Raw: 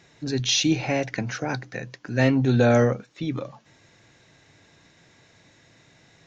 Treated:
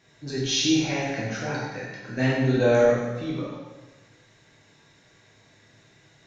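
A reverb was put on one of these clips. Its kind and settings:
dense smooth reverb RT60 1.2 s, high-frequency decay 0.9×, DRR −6.5 dB
level −8 dB

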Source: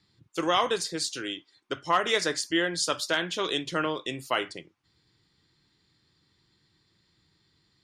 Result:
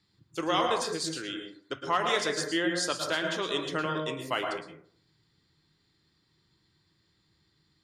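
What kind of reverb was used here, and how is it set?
dense smooth reverb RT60 0.55 s, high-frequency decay 0.3×, pre-delay 100 ms, DRR 3.5 dB
level −3.5 dB

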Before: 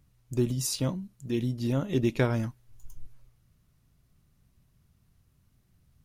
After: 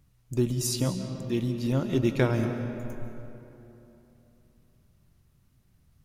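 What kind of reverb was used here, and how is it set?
comb and all-pass reverb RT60 3.2 s, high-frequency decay 0.55×, pre-delay 110 ms, DRR 7 dB
level +1 dB

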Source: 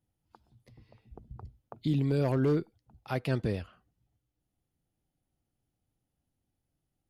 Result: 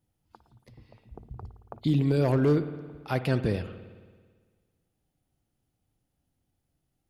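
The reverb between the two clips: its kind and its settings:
spring reverb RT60 1.6 s, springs 55 ms, chirp 40 ms, DRR 11 dB
level +4 dB

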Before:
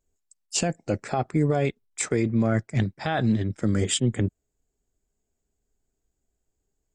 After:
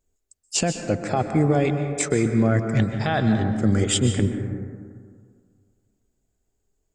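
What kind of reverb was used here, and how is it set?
dense smooth reverb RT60 2 s, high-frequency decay 0.3×, pre-delay 115 ms, DRR 6 dB
level +2.5 dB

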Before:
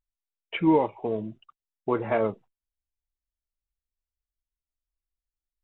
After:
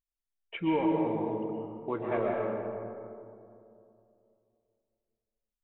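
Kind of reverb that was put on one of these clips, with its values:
comb and all-pass reverb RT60 2.7 s, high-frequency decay 0.35×, pre-delay 90 ms, DRR −1.5 dB
level −8 dB

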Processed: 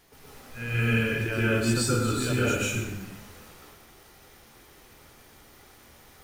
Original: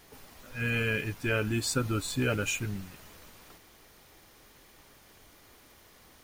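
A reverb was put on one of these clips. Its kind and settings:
dense smooth reverb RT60 0.97 s, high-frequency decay 0.75×, pre-delay 110 ms, DRR −7.5 dB
level −4 dB

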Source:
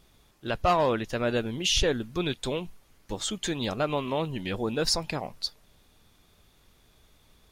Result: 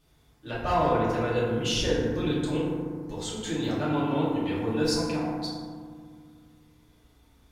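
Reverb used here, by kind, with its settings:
feedback delay network reverb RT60 1.9 s, low-frequency decay 1.55×, high-frequency decay 0.35×, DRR −8 dB
level −9.5 dB

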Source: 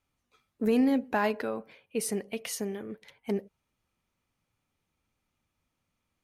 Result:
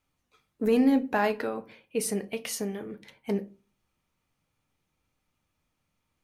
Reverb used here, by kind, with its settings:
rectangular room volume 130 cubic metres, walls furnished, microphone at 0.5 metres
level +1.5 dB

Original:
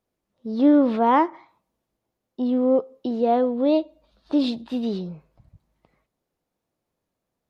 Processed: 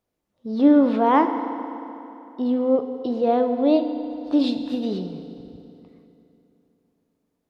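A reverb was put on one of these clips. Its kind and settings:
feedback delay network reverb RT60 3.1 s, high-frequency decay 0.75×, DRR 7.5 dB

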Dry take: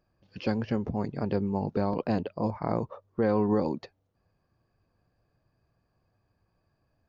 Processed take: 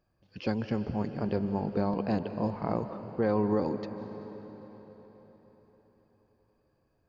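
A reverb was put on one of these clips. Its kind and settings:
comb and all-pass reverb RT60 4.7 s, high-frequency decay 0.85×, pre-delay 115 ms, DRR 9 dB
level −2 dB

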